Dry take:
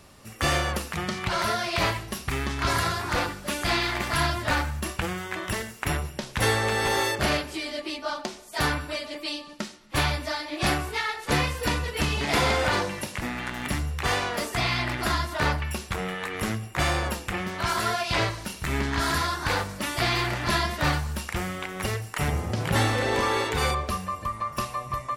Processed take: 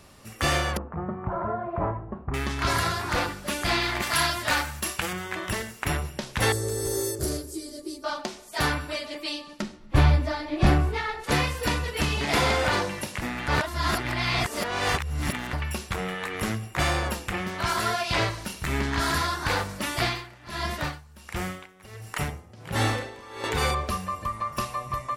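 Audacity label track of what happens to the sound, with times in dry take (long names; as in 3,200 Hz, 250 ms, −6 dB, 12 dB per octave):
0.770000	2.340000	low-pass filter 1,100 Hz 24 dB per octave
4.020000	5.130000	spectral tilt +2 dB per octave
6.520000	8.040000	drawn EQ curve 130 Hz 0 dB, 180 Hz −14 dB, 370 Hz +4 dB, 820 Hz −19 dB, 1,400 Hz −16 dB, 2,700 Hz −24 dB, 4,900 Hz −4 dB, 8,500 Hz +6 dB
9.620000	11.240000	spectral tilt −3 dB per octave
13.480000	15.530000	reverse
20.010000	23.440000	tremolo with a sine in dB 1.4 Hz, depth 21 dB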